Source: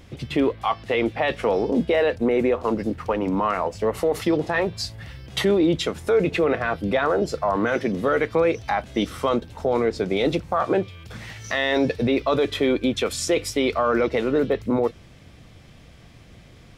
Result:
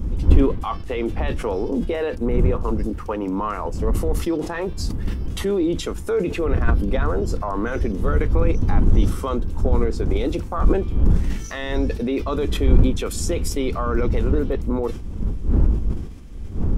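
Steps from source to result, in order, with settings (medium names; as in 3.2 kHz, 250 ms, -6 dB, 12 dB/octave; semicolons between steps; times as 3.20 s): wind noise 100 Hz -18 dBFS; peaking EQ 640 Hz -9 dB 0.87 oct; in parallel at +1 dB: peak limiter -16 dBFS, peak gain reduction 18 dB; on the sum: ten-band graphic EQ 125 Hz -12 dB, 2 kHz -8 dB, 4 kHz -8 dB; decay stretcher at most 77 dB/s; trim -3.5 dB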